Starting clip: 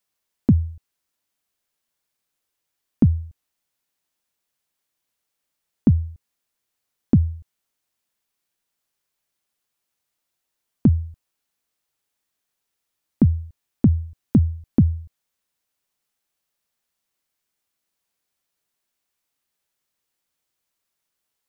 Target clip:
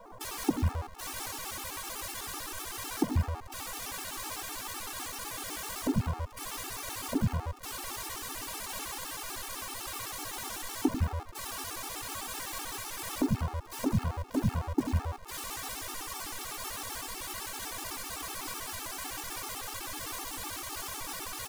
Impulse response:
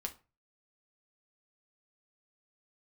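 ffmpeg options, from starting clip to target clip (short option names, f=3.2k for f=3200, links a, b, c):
-filter_complex "[0:a]aeval=exprs='val(0)+0.5*0.0211*sgn(val(0))':c=same,bandreject=f=700:w=12,aecho=1:1:2.6:0.39,acrossover=split=220|990[a][b][c];[a]adelay=90[d];[c]adelay=210[e];[d][b][e]amix=inputs=3:normalize=0,acompressor=threshold=-35dB:ratio=8,asplit=2[f][g];[g]lowshelf=f=420:t=q:w=3:g=13[h];[1:a]atrim=start_sample=2205,atrim=end_sample=3528,asetrate=24696,aresample=44100[i];[h][i]afir=irnorm=-1:irlink=0,volume=-5.5dB[j];[f][j]amix=inputs=2:normalize=0,aresample=32000,aresample=44100,acrusher=bits=7:dc=4:mix=0:aa=0.000001,equalizer=f=125:t=o:w=1:g=-3,equalizer=f=250:t=o:w=1:g=-6,equalizer=f=500:t=o:w=1:g=7,equalizer=f=1k:t=o:w=1:g=12,afftfilt=real='re*gt(sin(2*PI*7.9*pts/sr)*(1-2*mod(floor(b*sr/1024/230),2)),0)':imag='im*gt(sin(2*PI*7.9*pts/sr)*(1-2*mod(floor(b*sr/1024/230),2)),0)':win_size=1024:overlap=0.75"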